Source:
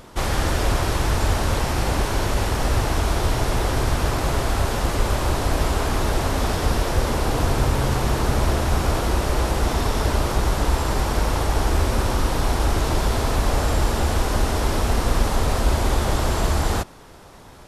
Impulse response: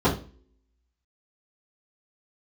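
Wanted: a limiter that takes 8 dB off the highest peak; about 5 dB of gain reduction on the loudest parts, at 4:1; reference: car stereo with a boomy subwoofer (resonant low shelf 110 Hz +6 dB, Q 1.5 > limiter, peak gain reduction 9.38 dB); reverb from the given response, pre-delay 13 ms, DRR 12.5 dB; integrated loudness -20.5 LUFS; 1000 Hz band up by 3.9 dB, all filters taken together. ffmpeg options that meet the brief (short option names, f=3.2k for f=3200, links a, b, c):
-filter_complex "[0:a]equalizer=f=1k:t=o:g=5,acompressor=threshold=-20dB:ratio=4,alimiter=limit=-18.5dB:level=0:latency=1,asplit=2[a][b];[1:a]atrim=start_sample=2205,adelay=13[c];[b][c]afir=irnorm=-1:irlink=0,volume=-30dB[d];[a][d]amix=inputs=2:normalize=0,lowshelf=f=110:t=q:w=1.5:g=6,volume=8.5dB,alimiter=limit=-10.5dB:level=0:latency=1"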